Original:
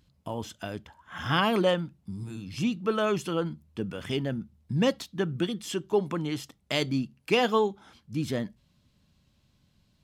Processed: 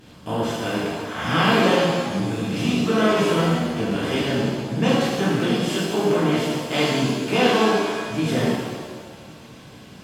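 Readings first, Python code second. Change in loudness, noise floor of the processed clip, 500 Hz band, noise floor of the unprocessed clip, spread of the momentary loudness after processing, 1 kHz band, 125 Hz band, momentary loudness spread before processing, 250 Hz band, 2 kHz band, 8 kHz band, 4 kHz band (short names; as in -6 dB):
+8.0 dB, -44 dBFS, +7.5 dB, -68 dBFS, 9 LU, +8.5 dB, +8.5 dB, 13 LU, +9.5 dB, +9.5 dB, +10.0 dB, +8.5 dB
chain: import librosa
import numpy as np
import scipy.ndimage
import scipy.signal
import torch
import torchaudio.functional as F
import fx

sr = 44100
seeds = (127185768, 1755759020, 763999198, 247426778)

y = fx.bin_compress(x, sr, power=0.6)
y = fx.rev_shimmer(y, sr, seeds[0], rt60_s=1.5, semitones=7, shimmer_db=-8, drr_db=-9.5)
y = y * 10.0 ** (-6.0 / 20.0)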